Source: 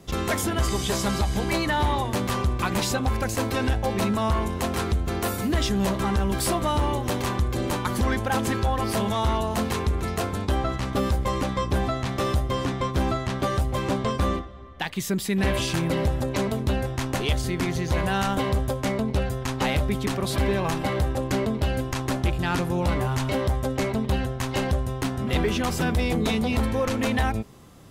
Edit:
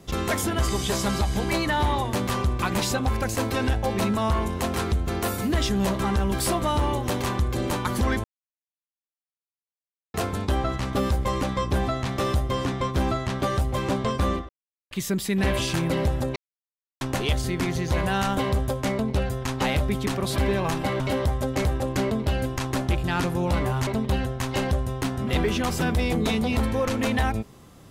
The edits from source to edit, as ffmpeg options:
ffmpeg -i in.wav -filter_complex "[0:a]asplit=10[link_01][link_02][link_03][link_04][link_05][link_06][link_07][link_08][link_09][link_10];[link_01]atrim=end=8.24,asetpts=PTS-STARTPTS,afade=type=out:start_time=8.236:duration=0.004:curve=hsin[link_11];[link_02]atrim=start=8.24:end=10.14,asetpts=PTS-STARTPTS,volume=0[link_12];[link_03]atrim=start=10.14:end=14.49,asetpts=PTS-STARTPTS,afade=type=in:duration=0.004:curve=hsin,afade=type=out:start_time=4.346:duration=0.004:curve=hsin[link_13];[link_04]atrim=start=14.49:end=14.91,asetpts=PTS-STARTPTS,volume=0[link_14];[link_05]atrim=start=14.91:end=16.36,asetpts=PTS-STARTPTS,afade=type=in:duration=0.004:curve=hsin,afade=type=out:start_time=1.446:duration=0.004:curve=hsin[link_15];[link_06]atrim=start=16.36:end=17.01,asetpts=PTS-STARTPTS,volume=0[link_16];[link_07]atrim=start=17.01:end=21.002,asetpts=PTS-STARTPTS,afade=type=in:duration=0.004:curve=hsin[link_17];[link_08]atrim=start=23.218:end=23.872[link_18];[link_09]atrim=start=20.998:end=23.222[link_19];[link_10]atrim=start=23.868[link_20];[link_11][link_12][link_13][link_14][link_15][link_16][link_17]concat=n=7:v=0:a=1[link_21];[link_21][link_18]acrossfade=duration=0.004:curve1=hsin:curve2=hsin[link_22];[link_22][link_19]acrossfade=duration=0.004:curve1=hsin:curve2=hsin[link_23];[link_23][link_20]acrossfade=duration=0.004:curve1=hsin:curve2=hsin" out.wav

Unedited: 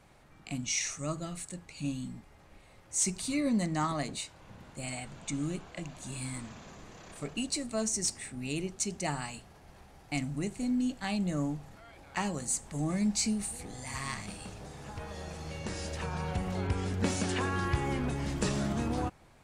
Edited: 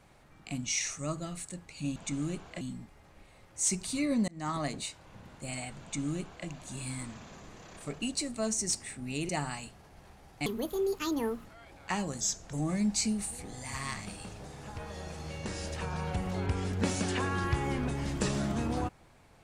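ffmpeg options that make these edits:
ffmpeg -i in.wav -filter_complex "[0:a]asplit=9[link_01][link_02][link_03][link_04][link_05][link_06][link_07][link_08][link_09];[link_01]atrim=end=1.962[link_10];[link_02]atrim=start=5.168:end=5.822[link_11];[link_03]atrim=start=1.958:end=3.63,asetpts=PTS-STARTPTS,afade=type=out:start_time=1.668:duration=0.004:curve=hsin[link_12];[link_04]atrim=start=3.63:end=8.642,asetpts=PTS-STARTPTS,afade=type=in:duration=0.31[link_13];[link_05]atrim=start=8.998:end=10.174[link_14];[link_06]atrim=start=10.17:end=11.72,asetpts=PTS-STARTPTS,asetrate=68796,aresample=44100,atrim=end_sample=43817,asetpts=PTS-STARTPTS[link_15];[link_07]atrim=start=11.716:end=12.474[link_16];[link_08]atrim=start=12.47:end=12.74,asetpts=PTS-STARTPTS,asetrate=36162,aresample=44100[link_17];[link_09]atrim=start=12.736[link_18];[link_10][link_11]acrossfade=duration=0.004:curve1=hsin:curve2=hsin[link_19];[link_12][link_13]concat=n=2:v=0:a=1[link_20];[link_19][link_20]acrossfade=duration=0.004:curve1=hsin:curve2=hsin[link_21];[link_21][link_14]acrossfade=duration=0.004:curve1=hsin:curve2=hsin[link_22];[link_22][link_15]acrossfade=duration=0.004:curve1=hsin:curve2=hsin[link_23];[link_23][link_16]acrossfade=duration=0.004:curve1=hsin:curve2=hsin[link_24];[link_24][link_17]acrossfade=duration=0.004:curve1=hsin:curve2=hsin[link_25];[link_25][link_18]acrossfade=duration=0.004:curve1=hsin:curve2=hsin" out.wav

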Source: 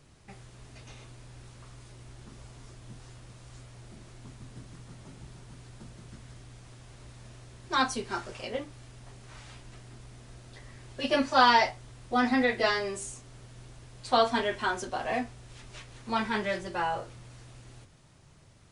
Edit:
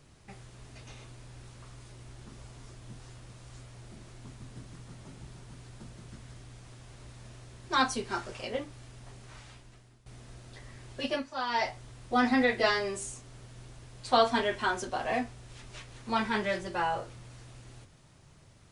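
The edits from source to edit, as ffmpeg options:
ffmpeg -i in.wav -filter_complex "[0:a]asplit=4[link_01][link_02][link_03][link_04];[link_01]atrim=end=10.06,asetpts=PTS-STARTPTS,afade=type=out:start_time=9.21:duration=0.85:silence=0.133352[link_05];[link_02]atrim=start=10.06:end=11.25,asetpts=PTS-STARTPTS,afade=type=in:duration=0.004:curve=hsin:silence=0.133352,afade=type=out:start_time=0.91:duration=0.28:silence=0.211349[link_06];[link_03]atrim=start=11.25:end=11.49,asetpts=PTS-STARTPTS,volume=-13.5dB[link_07];[link_04]atrim=start=11.49,asetpts=PTS-STARTPTS,afade=type=in:duration=0.28:silence=0.211349[link_08];[link_05][link_06][link_07][link_08]concat=n=4:v=0:a=1" out.wav

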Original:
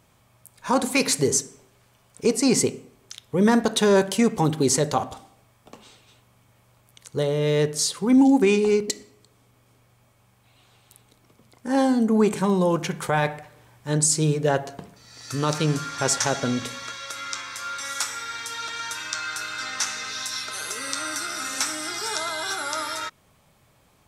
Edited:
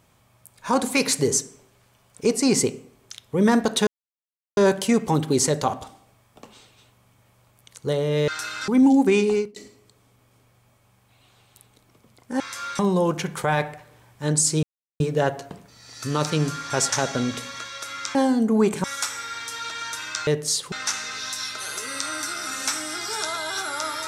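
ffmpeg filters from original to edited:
ffmpeg -i in.wav -filter_complex "[0:a]asplit=12[link_01][link_02][link_03][link_04][link_05][link_06][link_07][link_08][link_09][link_10][link_11][link_12];[link_01]atrim=end=3.87,asetpts=PTS-STARTPTS,afade=type=out:start_time=3.866:duration=0.004:curve=hsin,apad=pad_dur=0.7[link_13];[link_02]atrim=start=3.87:end=7.582,asetpts=PTS-STARTPTS,afade=type=in:duration=0.004:curve=hsin[link_14];[link_03]atrim=start=19.248:end=19.652[link_15];[link_04]atrim=start=8.028:end=8.91,asetpts=PTS-STARTPTS,afade=type=out:start_time=0.632:duration=0.25[link_16];[link_05]atrim=start=8.91:end=11.752,asetpts=PTS-STARTPTS,afade=type=in:duration=0.004:curve=hsin[link_17];[link_06]atrim=start=17.428:end=17.822[link_18];[link_07]atrim=start=12.438:end=14.28,asetpts=PTS-STARTPTS,afade=type=out:start_time=1.838:duration=0.004:curve=hsin,apad=pad_dur=0.37[link_19];[link_08]atrim=start=14.28:end=17.432,asetpts=PTS-STARTPTS,afade=type=in:duration=0.004:curve=hsin[link_20];[link_09]atrim=start=11.748:end=12.442[link_21];[link_10]atrim=start=17.818:end=19.252[link_22];[link_11]atrim=start=7.578:end=8.032[link_23];[link_12]atrim=start=19.648[link_24];[link_13][link_14]concat=n=2:v=0:a=1[link_25];[link_25][link_15]acrossfade=duration=0.004:curve1=hsin:curve2=hsin[link_26];[link_16][link_17]concat=n=2:v=0:a=1[link_27];[link_26][link_27]acrossfade=duration=0.004:curve1=hsin:curve2=hsin[link_28];[link_28][link_18]acrossfade=duration=0.004:curve1=hsin:curve2=hsin[link_29];[link_19][link_20]concat=n=2:v=0:a=1[link_30];[link_29][link_30]acrossfade=duration=0.004:curve1=hsin:curve2=hsin[link_31];[link_31][link_21]acrossfade=duration=0.004:curve1=hsin:curve2=hsin[link_32];[link_32][link_22]acrossfade=duration=0.004:curve1=hsin:curve2=hsin[link_33];[link_33][link_23]acrossfade=duration=0.004:curve1=hsin:curve2=hsin[link_34];[link_34][link_24]acrossfade=duration=0.004:curve1=hsin:curve2=hsin" out.wav

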